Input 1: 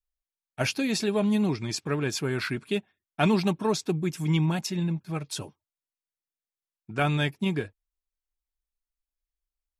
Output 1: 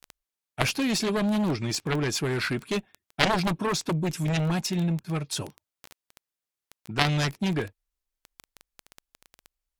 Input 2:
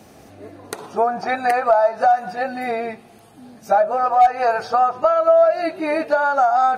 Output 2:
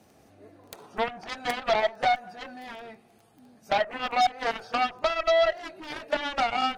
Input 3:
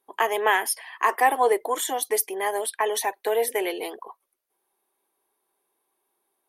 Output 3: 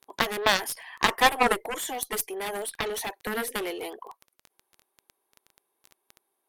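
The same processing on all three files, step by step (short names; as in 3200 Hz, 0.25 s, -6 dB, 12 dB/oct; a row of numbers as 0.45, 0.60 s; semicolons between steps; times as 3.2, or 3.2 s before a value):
added harmonics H 4 -28 dB, 7 -12 dB, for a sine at -5 dBFS; crackle 11/s -32 dBFS; match loudness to -27 LUFS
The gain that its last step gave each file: +6.5, -10.0, 0.0 dB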